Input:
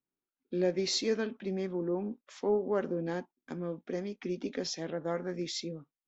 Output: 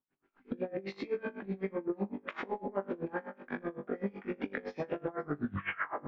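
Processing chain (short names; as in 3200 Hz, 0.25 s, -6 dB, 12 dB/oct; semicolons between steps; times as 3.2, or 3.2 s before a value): tape stop at the end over 0.94 s; recorder AGC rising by 73 dB/s; bell 3300 Hz +6 dB 2 oct; tape echo 0.532 s, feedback 71%, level -20 dB, low-pass 3300 Hz; LFO low-pass saw up 6.5 Hz 950–2600 Hz; high shelf 2100 Hz -11.5 dB; on a send: flutter echo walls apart 3.5 m, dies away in 0.47 s; on the sum: compressor, threshold -29 dBFS, peak gain reduction 9 dB; dB-linear tremolo 7.9 Hz, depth 23 dB; gain +1.5 dB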